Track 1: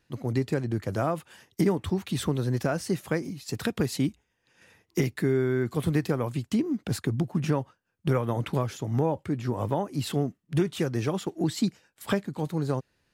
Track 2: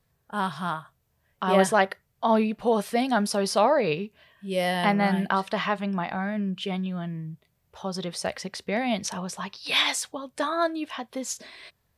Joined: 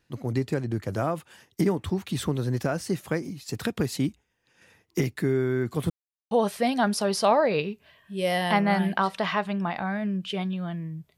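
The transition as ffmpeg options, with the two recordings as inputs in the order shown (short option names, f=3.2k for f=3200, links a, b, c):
-filter_complex "[0:a]apad=whole_dur=11.17,atrim=end=11.17,asplit=2[a][b];[a]atrim=end=5.9,asetpts=PTS-STARTPTS,afade=t=out:st=5.896:d=0.004:c=hsin[c];[b]atrim=start=5.9:end=6.31,asetpts=PTS-STARTPTS,volume=0[d];[1:a]atrim=start=2.64:end=7.5,asetpts=PTS-STARTPTS,afade=t=in:d=0.004:c=hsin[e];[c][d][e]concat=n=3:v=0:a=1"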